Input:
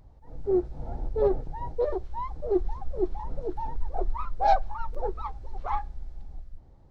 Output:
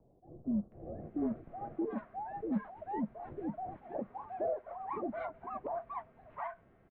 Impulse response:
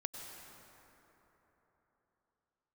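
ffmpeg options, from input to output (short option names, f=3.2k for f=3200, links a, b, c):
-filter_complex "[0:a]acrossover=split=240|950[a][b][c];[a]acompressor=threshold=-31dB:ratio=4[d];[b]acompressor=threshold=-39dB:ratio=4[e];[c]acompressor=threshold=-36dB:ratio=4[f];[d][e][f]amix=inputs=3:normalize=0,highpass=f=200:t=q:w=0.5412,highpass=f=200:t=q:w=1.307,lowpass=f=2.6k:t=q:w=0.5176,lowpass=f=2.6k:t=q:w=0.7071,lowpass=f=2.6k:t=q:w=1.932,afreqshift=-150,acrossover=split=800[g][h];[h]adelay=720[i];[g][i]amix=inputs=2:normalize=0,volume=1dB"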